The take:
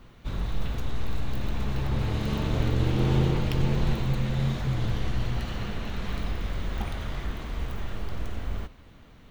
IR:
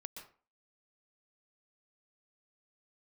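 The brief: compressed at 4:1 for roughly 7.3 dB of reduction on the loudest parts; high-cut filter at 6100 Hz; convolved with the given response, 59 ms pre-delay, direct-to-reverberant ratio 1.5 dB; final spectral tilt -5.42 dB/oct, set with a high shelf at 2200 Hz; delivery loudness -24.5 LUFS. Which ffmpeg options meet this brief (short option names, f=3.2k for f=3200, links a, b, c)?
-filter_complex "[0:a]lowpass=6.1k,highshelf=f=2.2k:g=5,acompressor=threshold=-27dB:ratio=4,asplit=2[a][b];[1:a]atrim=start_sample=2205,adelay=59[c];[b][c]afir=irnorm=-1:irlink=0,volume=2.5dB[d];[a][d]amix=inputs=2:normalize=0,volume=8dB"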